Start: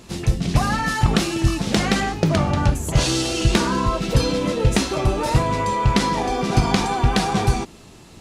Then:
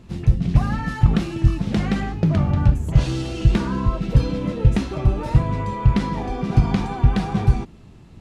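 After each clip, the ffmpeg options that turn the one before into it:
-af "bass=f=250:g=11,treble=f=4000:g=-10,volume=0.422"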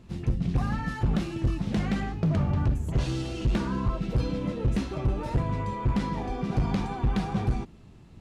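-af "asoftclip=type=hard:threshold=0.2,volume=0.531"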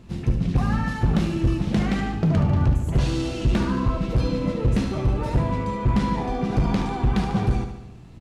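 -af "aecho=1:1:73|146|219|292|365|438|511:0.376|0.214|0.122|0.0696|0.0397|0.0226|0.0129,volume=1.68"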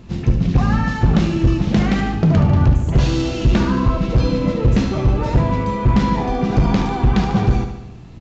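-af "aresample=16000,aresample=44100,volume=2"

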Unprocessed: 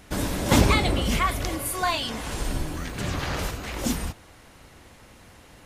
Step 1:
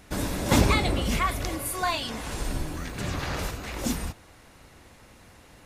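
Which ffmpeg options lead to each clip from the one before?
-af "bandreject=f=3100:w=22,volume=0.794"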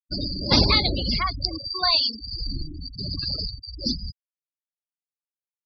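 -af "lowpass=f=4700:t=q:w=14,afftfilt=real='re*gte(hypot(re,im),0.1)':imag='im*gte(hypot(re,im),0.1)':win_size=1024:overlap=0.75"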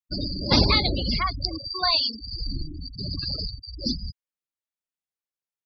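-af "highshelf=f=5100:g=-4.5"

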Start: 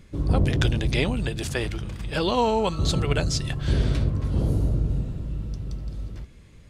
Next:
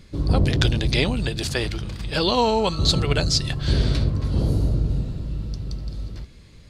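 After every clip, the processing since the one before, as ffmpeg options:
-af "equalizer=f=4400:t=o:w=0.55:g=9.5,volume=1.26"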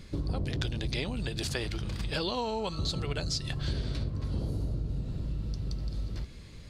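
-af "acompressor=threshold=0.0316:ratio=5"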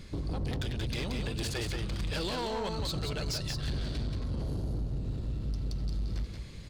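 -filter_complex "[0:a]asoftclip=type=tanh:threshold=0.0355,asplit=2[s0][s1];[s1]aecho=0:1:179:0.596[s2];[s0][s2]amix=inputs=2:normalize=0,volume=29.9,asoftclip=hard,volume=0.0335,volume=1.12"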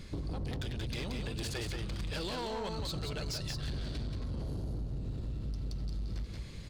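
-af "acompressor=threshold=0.02:ratio=6"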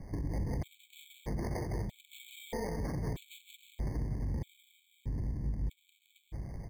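-filter_complex "[0:a]acrossover=split=390[s0][s1];[s0]aecho=1:1:104:0.596[s2];[s1]acrusher=samples=32:mix=1:aa=0.000001[s3];[s2][s3]amix=inputs=2:normalize=0,afftfilt=real='re*gt(sin(2*PI*0.79*pts/sr)*(1-2*mod(floor(b*sr/1024/2200),2)),0)':imag='im*gt(sin(2*PI*0.79*pts/sr)*(1-2*mod(floor(b*sr/1024/2200),2)),0)':win_size=1024:overlap=0.75,volume=1.12"

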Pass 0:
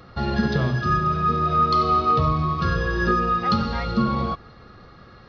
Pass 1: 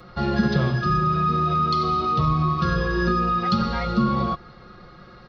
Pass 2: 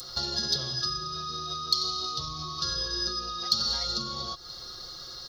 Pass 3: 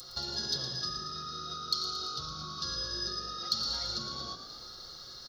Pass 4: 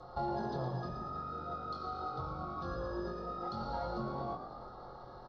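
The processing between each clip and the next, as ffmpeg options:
-filter_complex "[0:a]aecho=1:1:5.6:0.53,acrossover=split=270|2500[s0][s1][s2];[s1]alimiter=limit=0.119:level=0:latency=1[s3];[s0][s3][s2]amix=inputs=3:normalize=0"
-af "equalizer=f=190:t=o:w=0.57:g=-14,acompressor=threshold=0.0251:ratio=6,aexciter=amount=11.6:drive=10:freq=3900,volume=0.631"
-filter_complex "[0:a]asplit=9[s0][s1][s2][s3][s4][s5][s6][s7][s8];[s1]adelay=113,afreqshift=48,volume=0.355[s9];[s2]adelay=226,afreqshift=96,volume=0.219[s10];[s3]adelay=339,afreqshift=144,volume=0.136[s11];[s4]adelay=452,afreqshift=192,volume=0.0841[s12];[s5]adelay=565,afreqshift=240,volume=0.0525[s13];[s6]adelay=678,afreqshift=288,volume=0.0324[s14];[s7]adelay=791,afreqshift=336,volume=0.0202[s15];[s8]adelay=904,afreqshift=384,volume=0.0124[s16];[s0][s9][s10][s11][s12][s13][s14][s15][s16]amix=inputs=9:normalize=0,volume=0.501"
-filter_complex "[0:a]lowpass=f=850:t=q:w=3.6,aeval=exprs='0.0355*(cos(1*acos(clip(val(0)/0.0355,-1,1)))-cos(1*PI/2))+0.000224*(cos(8*acos(clip(val(0)/0.0355,-1,1)))-cos(8*PI/2))':c=same,asplit=2[s0][s1];[s1]adelay=23,volume=0.596[s2];[s0][s2]amix=inputs=2:normalize=0,volume=1.41"

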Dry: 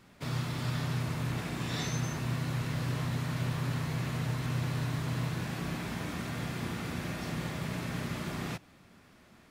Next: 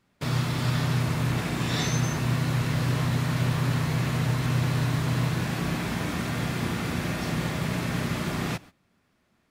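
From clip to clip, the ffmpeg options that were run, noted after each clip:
-af "agate=range=0.126:threshold=0.00282:ratio=16:detection=peak,volume=2.37"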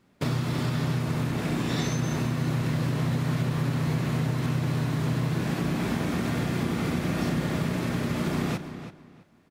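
-filter_complex "[0:a]equalizer=f=300:t=o:w=2.3:g=6.5,acompressor=threshold=0.0501:ratio=6,asplit=2[s0][s1];[s1]adelay=330,lowpass=f=4600:p=1,volume=0.282,asplit=2[s2][s3];[s3]adelay=330,lowpass=f=4600:p=1,volume=0.22,asplit=2[s4][s5];[s5]adelay=330,lowpass=f=4600:p=1,volume=0.22[s6];[s2][s4][s6]amix=inputs=3:normalize=0[s7];[s0][s7]amix=inputs=2:normalize=0,volume=1.26"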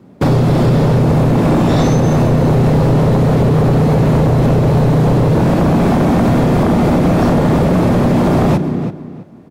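-filter_complex "[0:a]lowshelf=f=75:g=7,acrossover=split=100|850|6800[s0][s1][s2][s3];[s1]aeval=exprs='0.168*sin(PI/2*3.55*val(0)/0.168)':c=same[s4];[s0][s4][s2][s3]amix=inputs=4:normalize=0,volume=2.24"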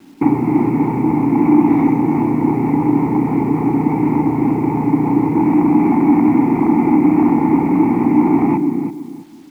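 -filter_complex "[0:a]asplit=3[s0][s1][s2];[s0]bandpass=f=300:t=q:w=8,volume=1[s3];[s1]bandpass=f=870:t=q:w=8,volume=0.501[s4];[s2]bandpass=f=2240:t=q:w=8,volume=0.355[s5];[s3][s4][s5]amix=inputs=3:normalize=0,highshelf=f=2600:t=q:w=3:g=-10.5,acrusher=bits=9:mix=0:aa=0.000001,volume=2.82"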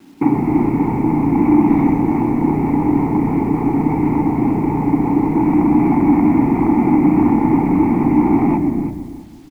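-filter_complex "[0:a]asplit=6[s0][s1][s2][s3][s4][s5];[s1]adelay=121,afreqshift=-87,volume=0.266[s6];[s2]adelay=242,afreqshift=-174,volume=0.123[s7];[s3]adelay=363,afreqshift=-261,volume=0.0562[s8];[s4]adelay=484,afreqshift=-348,volume=0.026[s9];[s5]adelay=605,afreqshift=-435,volume=0.0119[s10];[s0][s6][s7][s8][s9][s10]amix=inputs=6:normalize=0,volume=0.891"

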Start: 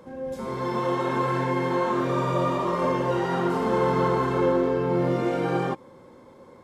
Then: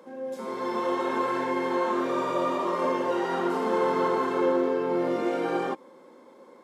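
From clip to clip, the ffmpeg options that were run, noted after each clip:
-af "highpass=f=230:w=0.5412,highpass=f=230:w=1.3066,volume=0.841"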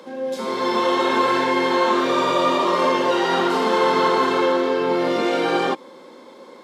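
-filter_complex "[0:a]equalizer=f=3900:w=0.99:g=10,acrossover=split=670[s0][s1];[s0]alimiter=limit=0.0668:level=0:latency=1:release=46[s2];[s2][s1]amix=inputs=2:normalize=0,volume=2.51"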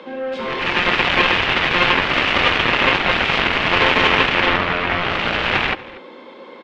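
-filter_complex "[0:a]aeval=exprs='0.501*(cos(1*acos(clip(val(0)/0.501,-1,1)))-cos(1*PI/2))+0.178*(cos(7*acos(clip(val(0)/0.501,-1,1)))-cos(7*PI/2))':c=same,lowpass=f=2800:t=q:w=2.2,asplit=2[s0][s1];[s1]adelay=239.1,volume=0.112,highshelf=f=4000:g=-5.38[s2];[s0][s2]amix=inputs=2:normalize=0"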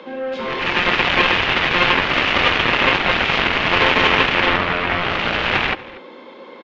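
-af "aresample=16000,aresample=44100"

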